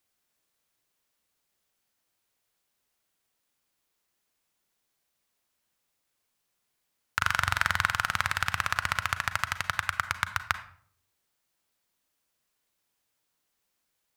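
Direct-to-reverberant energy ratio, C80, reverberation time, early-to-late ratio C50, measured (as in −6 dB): 11.0 dB, 16.0 dB, 0.55 s, 13.0 dB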